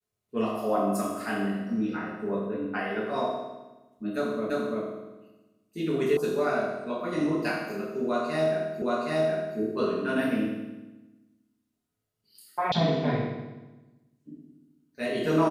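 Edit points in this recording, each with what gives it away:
4.50 s: repeat of the last 0.34 s
6.17 s: sound stops dead
8.82 s: repeat of the last 0.77 s
12.72 s: sound stops dead

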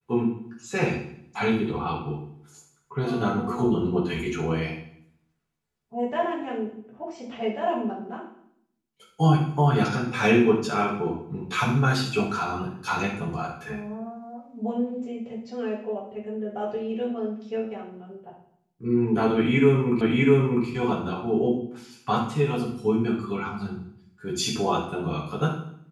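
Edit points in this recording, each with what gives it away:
20.01 s: repeat of the last 0.65 s

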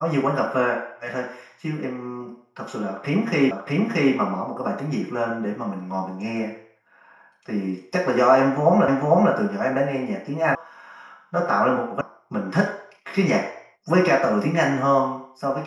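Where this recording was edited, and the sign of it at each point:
3.51 s: repeat of the last 0.63 s
8.88 s: repeat of the last 0.45 s
10.55 s: sound stops dead
12.01 s: sound stops dead

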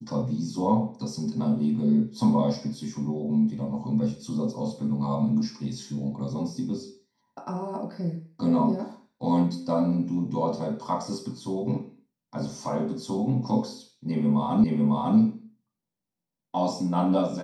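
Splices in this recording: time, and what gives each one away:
14.64 s: repeat of the last 0.55 s

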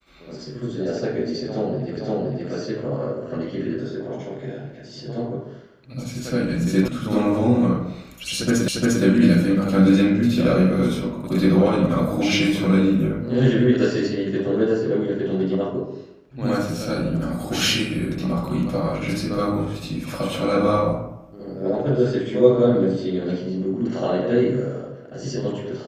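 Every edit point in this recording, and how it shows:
1.97 s: repeat of the last 0.52 s
6.88 s: sound stops dead
8.68 s: repeat of the last 0.35 s

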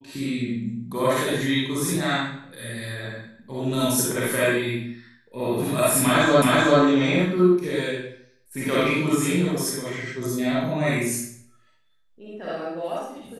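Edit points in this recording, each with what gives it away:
6.42 s: repeat of the last 0.38 s

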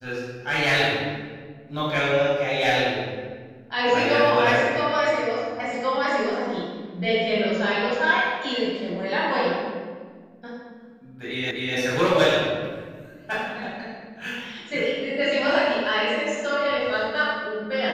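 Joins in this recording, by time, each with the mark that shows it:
11.51 s: repeat of the last 0.25 s

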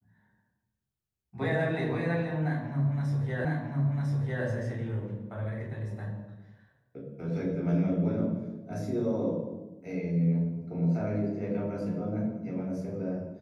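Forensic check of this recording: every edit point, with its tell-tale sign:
3.45 s: repeat of the last 1 s

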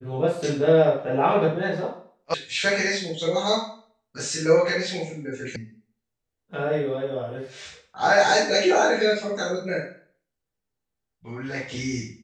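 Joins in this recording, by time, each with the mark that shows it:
2.34 s: sound stops dead
5.56 s: sound stops dead

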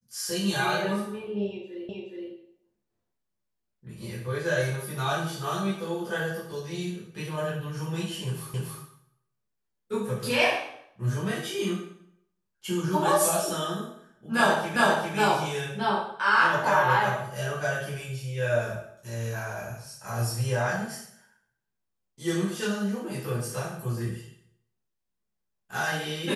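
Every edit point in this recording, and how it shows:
1.89 s: repeat of the last 0.42 s
8.54 s: repeat of the last 0.28 s
14.76 s: repeat of the last 0.4 s

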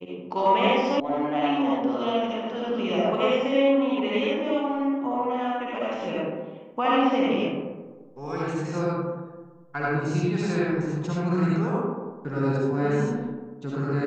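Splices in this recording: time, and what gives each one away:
1.00 s: sound stops dead

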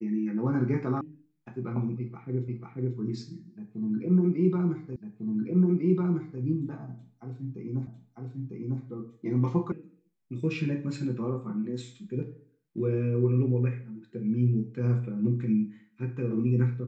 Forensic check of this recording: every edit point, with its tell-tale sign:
1.01 s: sound stops dead
2.48 s: repeat of the last 0.49 s
4.96 s: repeat of the last 1.45 s
7.87 s: repeat of the last 0.95 s
9.72 s: sound stops dead

